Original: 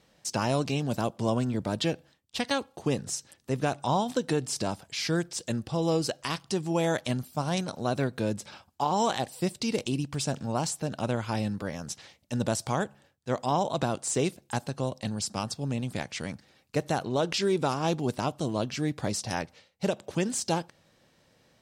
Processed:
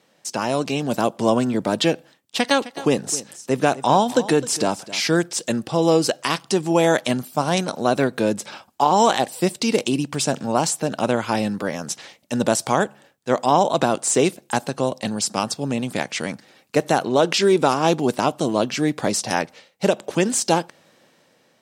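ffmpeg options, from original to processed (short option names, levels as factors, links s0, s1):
-filter_complex "[0:a]asettb=1/sr,asplit=3[s0][s1][s2];[s0]atrim=end=2.364[s3];[s1]atrim=start=2.36:end=5.14,asetpts=PTS-STARTPTS,afade=t=in:d=0.004:c=qsin,afade=t=out:st=2.776:d=0.004:c=qsin,aecho=1:1:260:0.15,atrim=end_sample=122598[s4];[s2]atrim=start=5.136[s5];[s3][s4]acrossfade=d=0.004:c1=hsin:c2=qsin[s6];[s6][s5]acrossfade=d=0.004:c1=qsin:c2=hsin,highpass=210,equalizer=f=4600:w=1.5:g=-2.5,dynaudnorm=f=170:g=9:m=2,volume=1.68"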